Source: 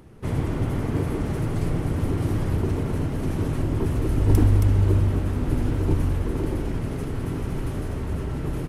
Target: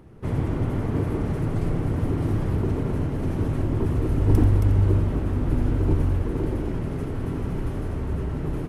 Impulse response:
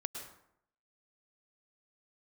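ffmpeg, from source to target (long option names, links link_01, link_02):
-filter_complex "[0:a]highshelf=frequency=2700:gain=-8,asplit=2[link_01][link_02];[1:a]atrim=start_sample=2205,adelay=87[link_03];[link_02][link_03]afir=irnorm=-1:irlink=0,volume=-10.5dB[link_04];[link_01][link_04]amix=inputs=2:normalize=0"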